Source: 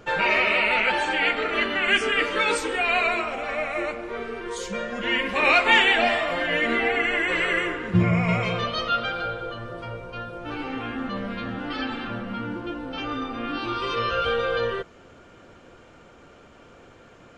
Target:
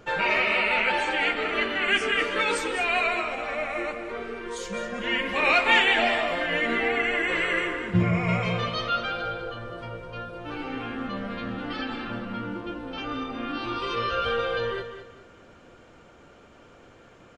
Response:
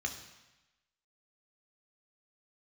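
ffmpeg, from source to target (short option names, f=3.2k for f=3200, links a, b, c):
-af "aecho=1:1:205|410|615:0.316|0.0885|0.0248,volume=-2.5dB"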